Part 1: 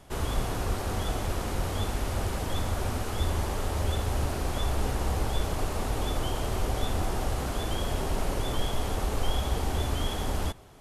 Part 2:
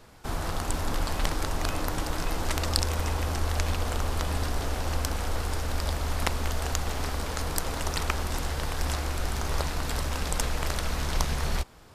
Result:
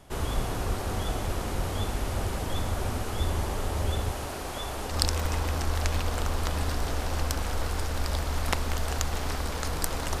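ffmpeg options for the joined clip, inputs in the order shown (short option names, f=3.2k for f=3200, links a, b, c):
-filter_complex "[0:a]asettb=1/sr,asplit=3[a][b][c];[a]atrim=end=4.114[d];[b]atrim=start=4.11:end=4.96,asetpts=PTS-STARTPTS,afade=t=in:d=0.004:c=qsin,afade=t=out:st=0.846:d=0.004:c=qsin,lowshelf=f=250:g=-10.5[e];[c]atrim=start=4.956[f];[d][e]acrossfade=d=0.004:c1=hsin:c2=qsin[g];[g][f]acrossfade=d=0.004:c1=qsin:c2=hsin,apad=whole_dur=10.2,atrim=end=10.2,atrim=end=4.96,asetpts=PTS-STARTPTS[h];[1:a]atrim=start=2.6:end=7.94,asetpts=PTS-STARTPTS[i];[h][i]acrossfade=d=0.1:c1=tri:c2=tri"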